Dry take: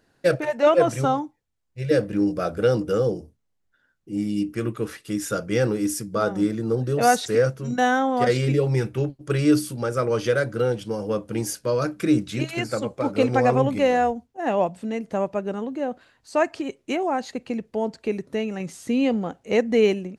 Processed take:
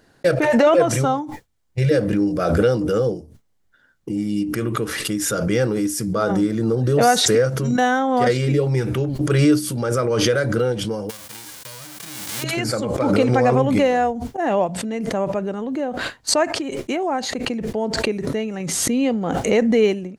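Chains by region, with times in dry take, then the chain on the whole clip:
11.09–12.42 spectral whitening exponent 0.1 + compressor 16:1, threshold -34 dBFS
whole clip: expander -38 dBFS; notch 2600 Hz, Q 21; backwards sustainer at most 27 dB/s; gain +1.5 dB

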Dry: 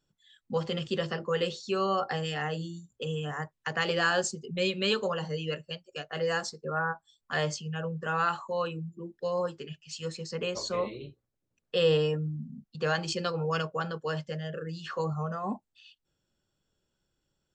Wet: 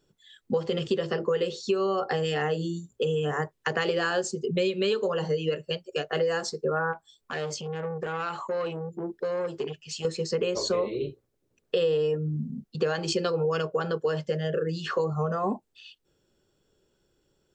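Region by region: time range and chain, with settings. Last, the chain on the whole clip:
6.93–10.05 compressor 2.5:1, threshold -38 dBFS + core saturation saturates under 1100 Hz
whole clip: bell 410 Hz +10 dB 0.79 oct; compressor 6:1, threshold -30 dBFS; gain +6.5 dB

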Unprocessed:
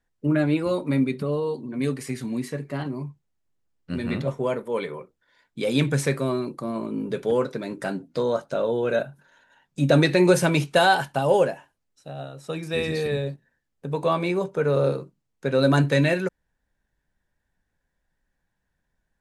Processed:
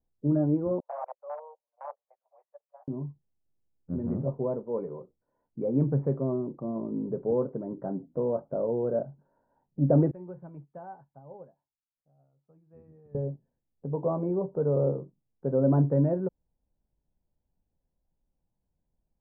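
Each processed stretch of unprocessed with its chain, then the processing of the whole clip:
0.8–2.88 gate -27 dBFS, range -30 dB + wrapped overs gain 18.5 dB + steep high-pass 560 Hz 72 dB/oct
10.11–13.15 passive tone stack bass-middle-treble 5-5-5 + upward expander, over -50 dBFS
whole clip: inverse Chebyshev low-pass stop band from 3900 Hz, stop band 70 dB; low shelf 460 Hz +4.5 dB; gain -6.5 dB

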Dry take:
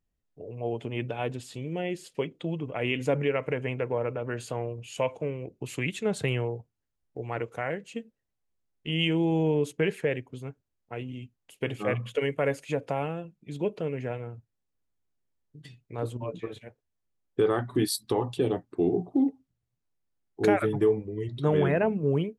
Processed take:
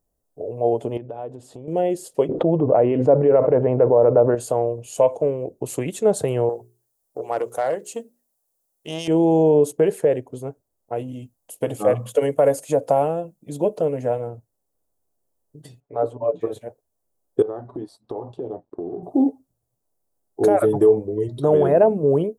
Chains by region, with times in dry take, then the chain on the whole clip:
0.97–1.68 LPF 1700 Hz 6 dB/oct + compressor 4:1, threshold -41 dBFS
2.29–4.35 LPF 1400 Hz + fast leveller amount 70%
6.49–9.08 tilt +2.5 dB/oct + notches 60/120/180/240/300/360/420 Hz + core saturation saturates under 1900 Hz
10.96–14.3 high shelf 5300 Hz +5.5 dB + notch 390 Hz, Q 5.4
15.8–16.41 LPF 1500 Hz + tilt +3.5 dB/oct + comb 7 ms, depth 69%
17.42–19.03 G.711 law mismatch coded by A + compressor 5:1, threshold -36 dBFS + tape spacing loss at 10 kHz 31 dB
whole clip: limiter -17.5 dBFS; EQ curve 190 Hz 0 dB, 640 Hz +12 dB, 2300 Hz -11 dB, 9600 Hz +10 dB; gain +3.5 dB

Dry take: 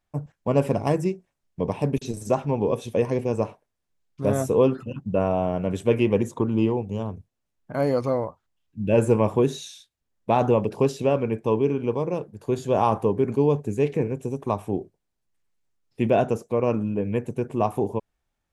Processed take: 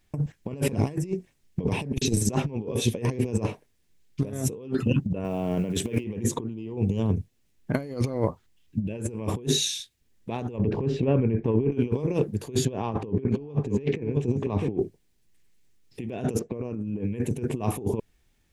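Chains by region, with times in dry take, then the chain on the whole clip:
5.24–6.04 companded quantiser 8-bit + HPF 130 Hz
10.58–11.72 LPF 1900 Hz + low shelf 88 Hz +11 dB + compressor 8:1, threshold -25 dBFS
12.65–14.78 air absorption 150 m + echo 0.655 s -16.5 dB
16.39–17 low-pass opened by the level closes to 1600 Hz, open at -22 dBFS + dynamic EQ 3100 Hz, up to -7 dB, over -46 dBFS, Q 0.83
whole clip: band shelf 890 Hz -8.5 dB; limiter -15.5 dBFS; negative-ratio compressor -32 dBFS, ratio -0.5; gain +6.5 dB

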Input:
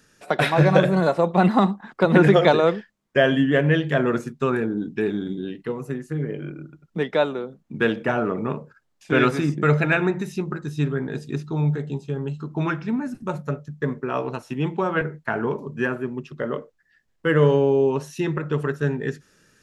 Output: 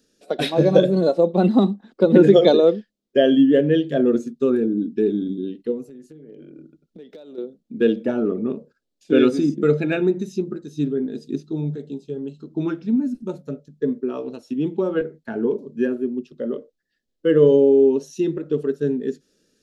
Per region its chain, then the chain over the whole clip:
5.87–7.38 compressor 12:1, threshold -33 dBFS + hard clip -29 dBFS
whole clip: spectral noise reduction 7 dB; graphic EQ 125/250/500/1000/2000/4000 Hz -9/+8/+7/-11/-7/+7 dB; gain -1 dB

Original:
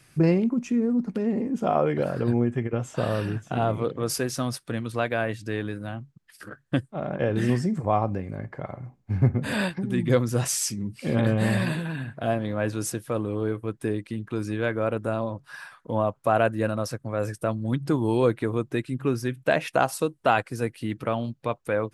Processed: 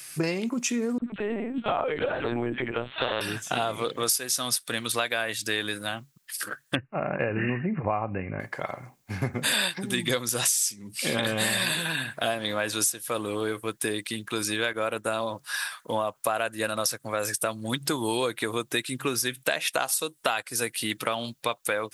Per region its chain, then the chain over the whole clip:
0.98–3.21 dispersion lows, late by 46 ms, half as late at 920 Hz + LPC vocoder at 8 kHz pitch kept
6.75–8.4 brick-wall FIR low-pass 2900 Hz + low shelf 160 Hz +11.5 dB
14.73–15.21 notch 4800 Hz, Q 13 + expander -32 dBFS + HPF 57 Hz
whole clip: tilt +4.5 dB/oct; compressor 8:1, threshold -29 dBFS; dynamic EQ 3600 Hz, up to +6 dB, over -56 dBFS, Q 6.2; gain +6 dB

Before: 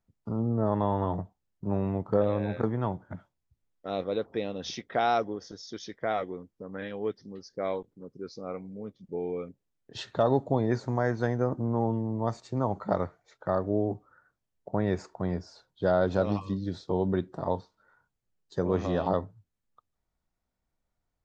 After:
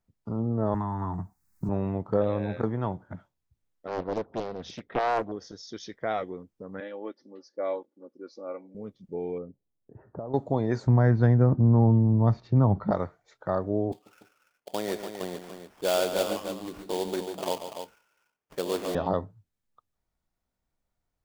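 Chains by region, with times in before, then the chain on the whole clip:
0.74–1.69 high shelf 4200 Hz +8 dB + fixed phaser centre 1300 Hz, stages 4 + three-band squash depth 100%
3.87–5.32 high shelf 2800 Hz -10 dB + Doppler distortion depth 0.8 ms
6.8–8.75 Chebyshev high-pass 420 Hz + high shelf 2100 Hz -9 dB + comb 3.5 ms, depth 67%
9.38–10.34 compressor, threshold -30 dBFS + Gaussian blur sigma 8.5 samples
10.87–12.91 steep low-pass 5600 Hz + tone controls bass +13 dB, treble -7 dB
13.92–18.95 HPF 340 Hz + sample-rate reducer 4000 Hz, jitter 20% + tapped delay 0.14/0.29 s -9.5/-8.5 dB
whole clip: dry

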